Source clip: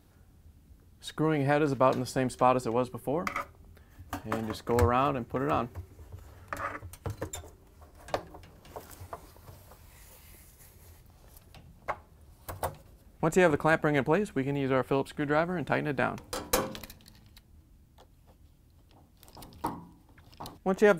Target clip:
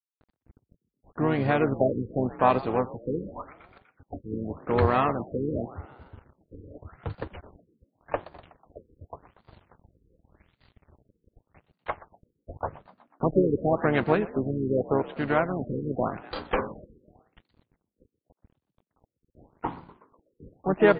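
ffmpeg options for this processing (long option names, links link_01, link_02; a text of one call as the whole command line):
ffmpeg -i in.wav -filter_complex "[0:a]agate=range=-33dB:threshold=-51dB:ratio=3:detection=peak,areverse,acompressor=mode=upward:threshold=-43dB:ratio=2.5,areverse,asplit=3[link_01][link_02][link_03];[link_02]asetrate=35002,aresample=44100,atempo=1.25992,volume=-9dB[link_04];[link_03]asetrate=66075,aresample=44100,atempo=0.66742,volume=-14dB[link_05];[link_01][link_04][link_05]amix=inputs=3:normalize=0,aeval=exprs='sgn(val(0))*max(abs(val(0))-0.00398,0)':channel_layout=same,asplit=2[link_06][link_07];[link_07]asplit=5[link_08][link_09][link_10][link_11][link_12];[link_08]adelay=123,afreqshift=48,volume=-19dB[link_13];[link_09]adelay=246,afreqshift=96,volume=-23.4dB[link_14];[link_10]adelay=369,afreqshift=144,volume=-27.9dB[link_15];[link_11]adelay=492,afreqshift=192,volume=-32.3dB[link_16];[link_12]adelay=615,afreqshift=240,volume=-36.7dB[link_17];[link_13][link_14][link_15][link_16][link_17]amix=inputs=5:normalize=0[link_18];[link_06][link_18]amix=inputs=2:normalize=0,afftfilt=real='re*lt(b*sr/1024,500*pow(4900/500,0.5+0.5*sin(2*PI*0.87*pts/sr)))':imag='im*lt(b*sr/1024,500*pow(4900/500,0.5+0.5*sin(2*PI*0.87*pts/sr)))':win_size=1024:overlap=0.75,volume=2.5dB" out.wav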